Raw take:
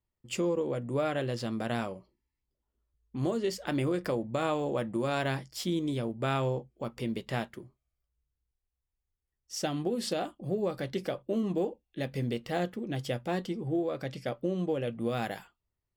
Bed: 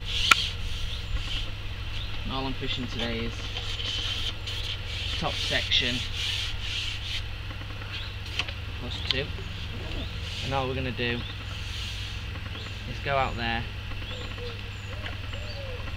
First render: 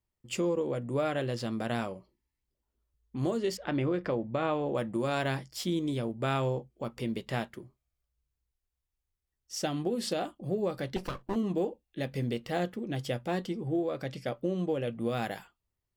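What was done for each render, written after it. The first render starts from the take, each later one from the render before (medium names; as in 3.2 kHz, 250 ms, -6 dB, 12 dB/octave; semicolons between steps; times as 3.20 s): 3.57–4.75 s: low-pass 3.2 kHz; 10.96–11.36 s: comb filter that takes the minimum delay 0.69 ms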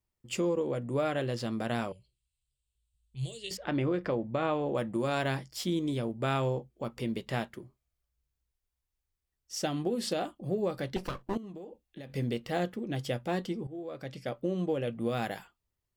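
1.92–3.51 s: FFT filter 140 Hz 0 dB, 250 Hz -28 dB, 450 Hz -13 dB, 1.4 kHz -30 dB, 2.7 kHz +4 dB, 3.9 kHz +6 dB, 5.9 kHz -6 dB, 8.3 kHz +11 dB, 12 kHz -7 dB; 11.37–12.10 s: compression 16:1, threshold -40 dBFS; 13.67–14.73 s: fade in equal-power, from -16.5 dB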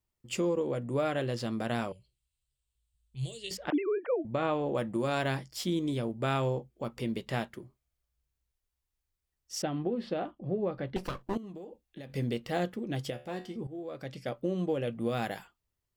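3.70–4.25 s: formants replaced by sine waves; 9.62–10.96 s: distance through air 380 m; 13.10–13.56 s: feedback comb 73 Hz, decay 0.39 s, mix 70%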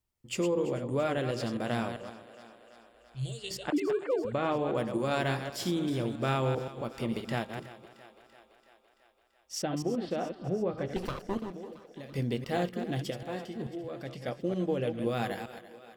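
chunks repeated in reverse 131 ms, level -7.5 dB; thinning echo 336 ms, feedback 67%, high-pass 240 Hz, level -16 dB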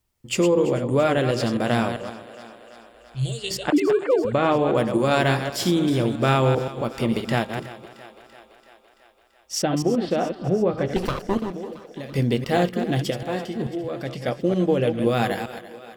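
trim +10 dB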